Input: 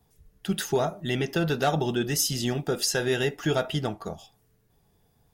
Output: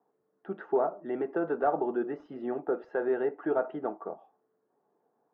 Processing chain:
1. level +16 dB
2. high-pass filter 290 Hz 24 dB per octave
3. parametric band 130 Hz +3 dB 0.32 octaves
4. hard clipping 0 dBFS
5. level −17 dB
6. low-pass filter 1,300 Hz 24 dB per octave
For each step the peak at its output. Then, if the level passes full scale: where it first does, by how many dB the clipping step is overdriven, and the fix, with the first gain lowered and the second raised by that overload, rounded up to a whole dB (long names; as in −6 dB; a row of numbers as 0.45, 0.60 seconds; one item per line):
+3.5, +5.0, +5.0, 0.0, −17.0, −17.0 dBFS
step 1, 5.0 dB
step 1 +11 dB, step 5 −12 dB